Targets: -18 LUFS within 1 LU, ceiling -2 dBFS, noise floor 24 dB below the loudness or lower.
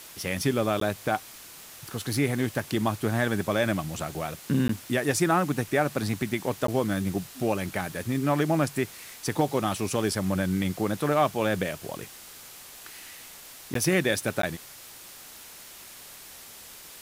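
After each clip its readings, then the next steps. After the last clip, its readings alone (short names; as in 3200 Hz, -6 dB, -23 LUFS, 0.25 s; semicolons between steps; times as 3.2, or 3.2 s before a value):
dropouts 5; longest dropout 13 ms; noise floor -46 dBFS; noise floor target -52 dBFS; loudness -27.5 LUFS; peak -10.5 dBFS; loudness target -18.0 LUFS
-> interpolate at 0.8/4.68/6.67/13.74/14.42, 13 ms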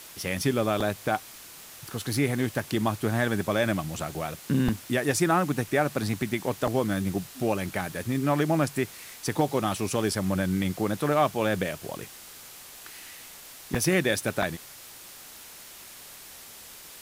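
dropouts 0; noise floor -46 dBFS; noise floor target -52 dBFS
-> denoiser 6 dB, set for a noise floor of -46 dBFS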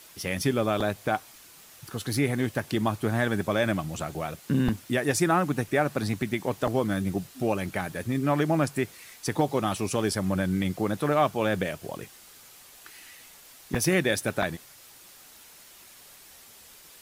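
noise floor -51 dBFS; noise floor target -52 dBFS
-> denoiser 6 dB, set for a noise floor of -51 dBFS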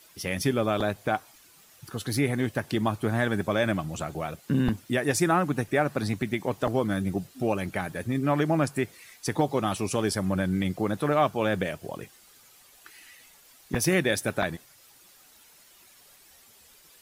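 noise floor -56 dBFS; loudness -27.5 LUFS; peak -10.5 dBFS; loudness target -18.0 LUFS
-> gain +9.5 dB; limiter -2 dBFS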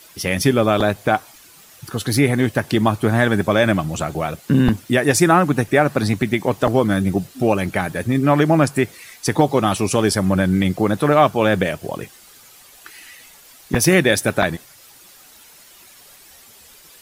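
loudness -18.0 LUFS; peak -2.0 dBFS; noise floor -47 dBFS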